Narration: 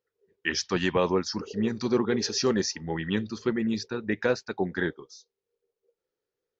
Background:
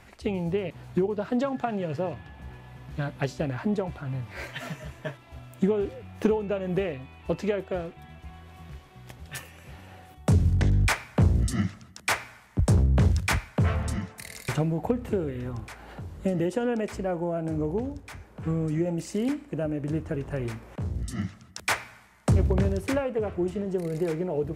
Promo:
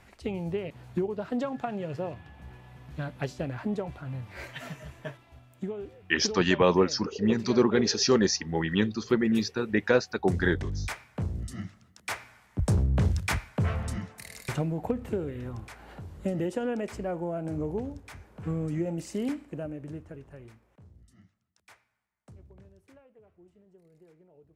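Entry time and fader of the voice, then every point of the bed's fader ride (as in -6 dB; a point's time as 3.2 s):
5.65 s, +2.5 dB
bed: 5.16 s -4 dB
5.46 s -11 dB
11.8 s -11 dB
12.7 s -3.5 dB
19.37 s -3.5 dB
21.42 s -30 dB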